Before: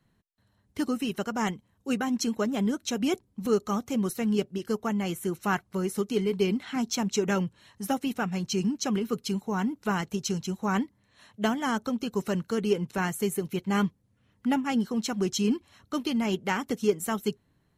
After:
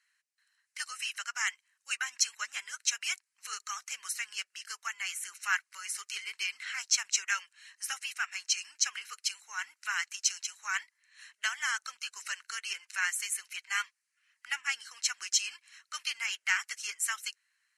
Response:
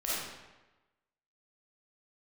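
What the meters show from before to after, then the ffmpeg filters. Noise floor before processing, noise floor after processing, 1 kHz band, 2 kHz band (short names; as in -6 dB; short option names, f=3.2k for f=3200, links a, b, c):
-70 dBFS, -83 dBFS, -8.5 dB, +4.0 dB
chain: -af "asuperpass=centerf=4300:order=8:qfactor=0.51,acontrast=83,equalizer=f=3.5k:w=4.2:g=-13"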